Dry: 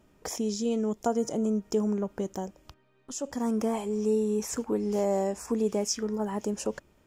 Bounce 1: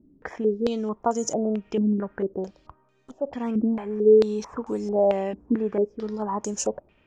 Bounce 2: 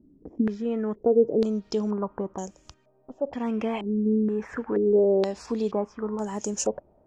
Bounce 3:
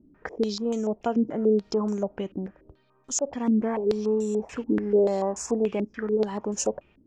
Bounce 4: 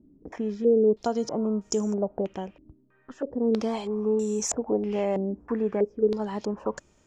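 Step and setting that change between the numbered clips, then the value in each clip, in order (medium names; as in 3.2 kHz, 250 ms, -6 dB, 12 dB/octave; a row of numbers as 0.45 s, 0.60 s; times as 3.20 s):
step-sequenced low-pass, rate: 4.5 Hz, 2.1 Hz, 6.9 Hz, 3.1 Hz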